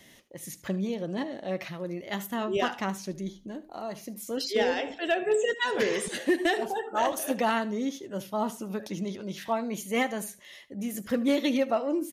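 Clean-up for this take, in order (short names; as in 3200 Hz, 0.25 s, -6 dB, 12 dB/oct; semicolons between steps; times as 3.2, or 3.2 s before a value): clip repair -17 dBFS; inverse comb 75 ms -18 dB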